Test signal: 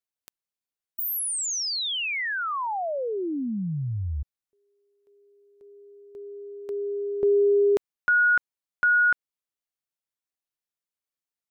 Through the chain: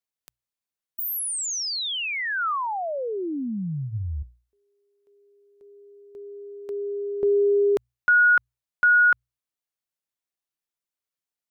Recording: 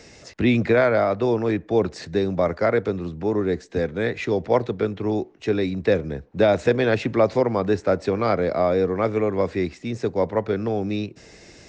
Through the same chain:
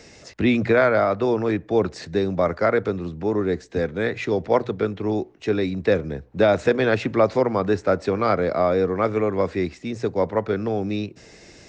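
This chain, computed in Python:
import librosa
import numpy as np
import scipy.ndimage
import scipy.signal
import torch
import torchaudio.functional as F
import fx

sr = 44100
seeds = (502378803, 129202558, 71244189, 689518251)

y = fx.hum_notches(x, sr, base_hz=60, count=2)
y = fx.dynamic_eq(y, sr, hz=1300.0, q=2.5, threshold_db=-37.0, ratio=4.0, max_db=4)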